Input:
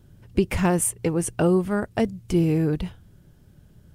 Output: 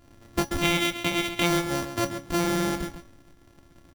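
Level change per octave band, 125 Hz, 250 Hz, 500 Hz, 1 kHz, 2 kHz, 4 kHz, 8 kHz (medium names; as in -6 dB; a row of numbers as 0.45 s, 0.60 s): -8.0 dB, -5.0 dB, -5.0 dB, +2.0 dB, +6.0 dB, +13.0 dB, -4.5 dB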